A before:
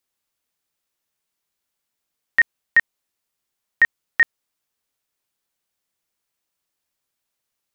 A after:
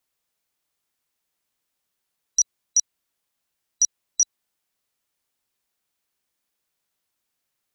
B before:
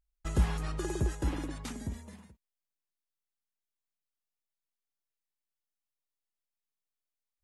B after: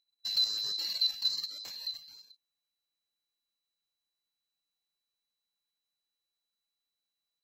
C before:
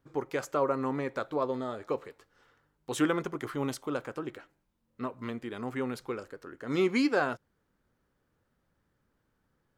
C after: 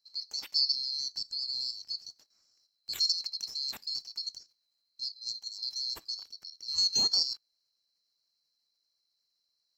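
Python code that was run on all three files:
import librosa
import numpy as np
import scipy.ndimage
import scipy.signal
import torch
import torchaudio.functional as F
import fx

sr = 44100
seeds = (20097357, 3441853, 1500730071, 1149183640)

y = fx.band_swap(x, sr, width_hz=4000)
y = fx.level_steps(y, sr, step_db=9)
y = y * librosa.db_to_amplitude(1.5)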